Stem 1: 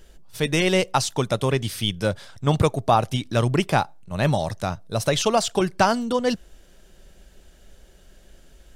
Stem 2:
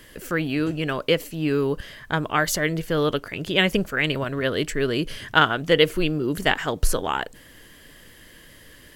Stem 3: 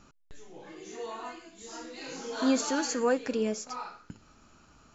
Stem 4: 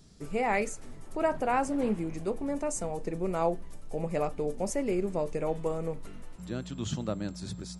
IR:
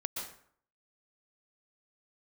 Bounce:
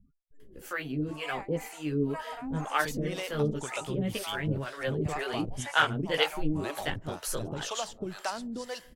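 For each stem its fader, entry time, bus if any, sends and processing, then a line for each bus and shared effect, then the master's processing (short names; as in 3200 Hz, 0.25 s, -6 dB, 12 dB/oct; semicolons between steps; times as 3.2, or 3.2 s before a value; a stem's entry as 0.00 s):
-1.0 dB, 2.45 s, send -17 dB, compressor 2.5:1, threshold -35 dBFS, peak gain reduction 14.5 dB
-2.0 dB, 0.40 s, no send, chorus voices 6, 0.44 Hz, delay 17 ms, depth 3.9 ms
-4.0 dB, 0.00 s, no send, low shelf 260 Hz +4.5 dB; soft clip -28.5 dBFS, distortion -7 dB; loudest bins only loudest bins 8
+2.5 dB, 0.90 s, send -9.5 dB, steep high-pass 720 Hz 48 dB/oct; auto duck -17 dB, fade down 1.95 s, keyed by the third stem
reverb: on, RT60 0.60 s, pre-delay 0.113 s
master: harmonic tremolo 2 Hz, depth 100%, crossover 470 Hz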